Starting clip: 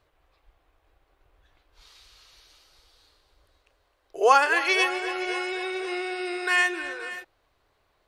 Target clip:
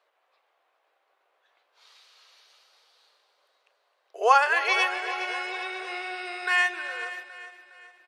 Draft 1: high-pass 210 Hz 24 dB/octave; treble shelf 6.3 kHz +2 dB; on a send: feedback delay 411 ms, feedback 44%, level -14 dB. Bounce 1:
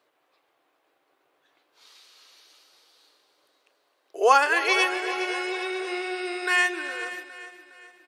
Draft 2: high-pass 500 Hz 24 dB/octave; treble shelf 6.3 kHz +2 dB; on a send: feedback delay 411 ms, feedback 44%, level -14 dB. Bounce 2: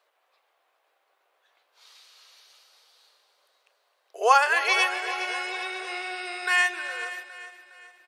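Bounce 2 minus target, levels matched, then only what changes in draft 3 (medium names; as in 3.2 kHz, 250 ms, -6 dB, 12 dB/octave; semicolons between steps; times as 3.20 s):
8 kHz band +5.5 dB
change: treble shelf 6.3 kHz -9 dB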